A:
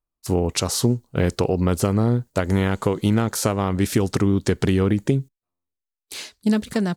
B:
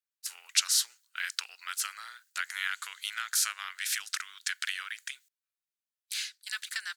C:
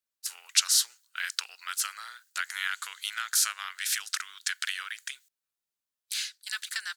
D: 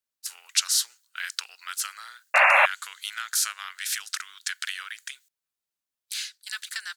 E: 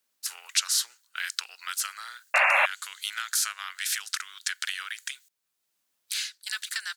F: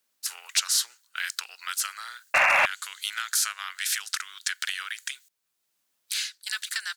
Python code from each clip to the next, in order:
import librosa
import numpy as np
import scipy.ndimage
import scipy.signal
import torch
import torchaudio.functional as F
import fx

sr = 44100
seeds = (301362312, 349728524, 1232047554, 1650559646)

y1 = scipy.signal.sosfilt(scipy.signal.cheby1(4, 1.0, 1500.0, 'highpass', fs=sr, output='sos'), x)
y2 = fx.peak_eq(y1, sr, hz=2200.0, db=-3.0, octaves=0.77)
y2 = y2 * librosa.db_to_amplitude(3.0)
y3 = fx.spec_paint(y2, sr, seeds[0], shape='noise', start_s=2.34, length_s=0.32, low_hz=530.0, high_hz=2800.0, level_db=-17.0)
y4 = fx.band_squash(y3, sr, depth_pct=40)
y5 = np.clip(10.0 ** (15.5 / 20.0) * y4, -1.0, 1.0) / 10.0 ** (15.5 / 20.0)
y5 = y5 * librosa.db_to_amplitude(1.5)